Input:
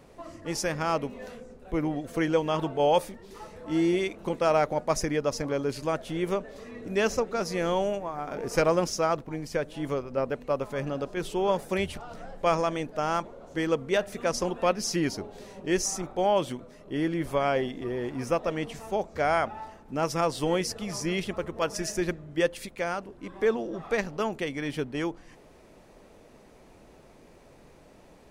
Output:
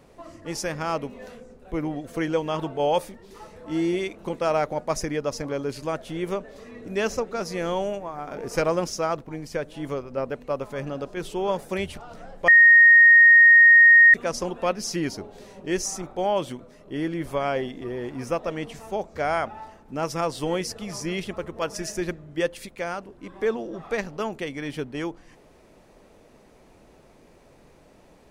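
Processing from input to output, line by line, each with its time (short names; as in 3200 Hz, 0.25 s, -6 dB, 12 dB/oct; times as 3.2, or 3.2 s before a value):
12.48–14.14 bleep 1860 Hz -9 dBFS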